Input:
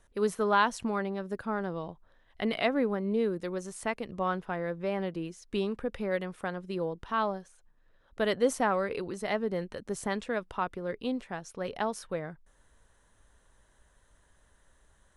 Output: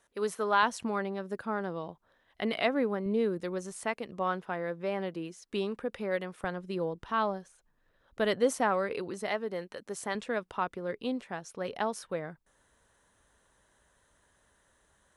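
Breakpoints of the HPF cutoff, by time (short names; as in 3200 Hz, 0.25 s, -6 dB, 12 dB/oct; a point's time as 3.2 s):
HPF 6 dB/oct
440 Hz
from 0.63 s 170 Hz
from 3.06 s 63 Hz
from 3.81 s 220 Hz
from 6.44 s 51 Hz
from 8.44 s 160 Hz
from 9.29 s 460 Hz
from 10.15 s 140 Hz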